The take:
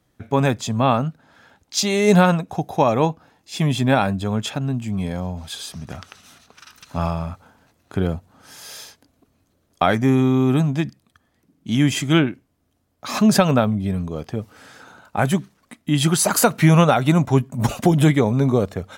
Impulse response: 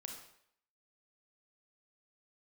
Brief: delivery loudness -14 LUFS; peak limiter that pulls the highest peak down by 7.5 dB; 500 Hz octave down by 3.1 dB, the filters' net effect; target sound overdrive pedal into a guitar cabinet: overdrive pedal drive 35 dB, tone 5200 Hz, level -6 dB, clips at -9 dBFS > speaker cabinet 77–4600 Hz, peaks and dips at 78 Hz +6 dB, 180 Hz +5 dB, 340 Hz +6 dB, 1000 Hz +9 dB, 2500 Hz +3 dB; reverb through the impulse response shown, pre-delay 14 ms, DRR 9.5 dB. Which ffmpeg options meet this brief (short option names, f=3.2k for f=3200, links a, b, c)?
-filter_complex "[0:a]equalizer=f=500:t=o:g=-7,alimiter=limit=-12.5dB:level=0:latency=1,asplit=2[a][b];[1:a]atrim=start_sample=2205,adelay=14[c];[b][c]afir=irnorm=-1:irlink=0,volume=-6dB[d];[a][d]amix=inputs=2:normalize=0,asplit=2[e][f];[f]highpass=f=720:p=1,volume=35dB,asoftclip=type=tanh:threshold=-9dB[g];[e][g]amix=inputs=2:normalize=0,lowpass=f=5.2k:p=1,volume=-6dB,highpass=77,equalizer=f=78:t=q:w=4:g=6,equalizer=f=180:t=q:w=4:g=5,equalizer=f=340:t=q:w=4:g=6,equalizer=f=1k:t=q:w=4:g=9,equalizer=f=2.5k:t=q:w=4:g=3,lowpass=f=4.6k:w=0.5412,lowpass=f=4.6k:w=1.3066,volume=1dB"